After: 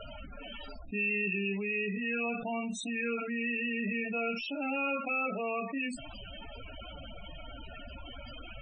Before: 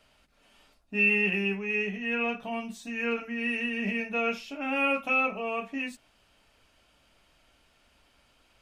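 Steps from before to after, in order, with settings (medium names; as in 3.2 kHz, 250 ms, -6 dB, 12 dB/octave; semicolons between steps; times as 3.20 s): loudest bins only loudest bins 16; level flattener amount 70%; trim -9 dB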